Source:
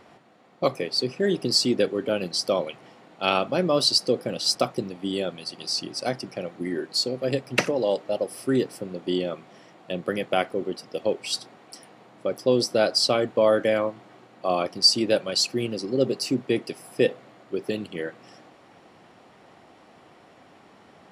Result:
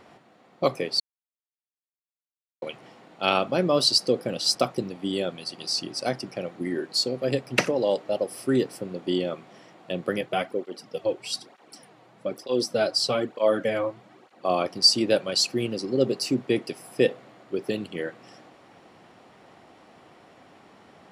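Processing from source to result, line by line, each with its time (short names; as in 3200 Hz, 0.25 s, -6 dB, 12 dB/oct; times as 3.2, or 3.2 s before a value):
1–2.62 mute
10.21–14.45 tape flanging out of phase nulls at 1.1 Hz, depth 5 ms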